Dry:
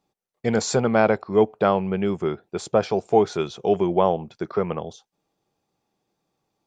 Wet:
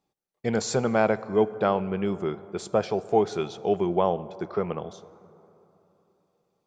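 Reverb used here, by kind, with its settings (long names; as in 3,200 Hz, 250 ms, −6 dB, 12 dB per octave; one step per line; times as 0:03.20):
dense smooth reverb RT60 3.3 s, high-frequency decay 0.4×, DRR 16 dB
level −4 dB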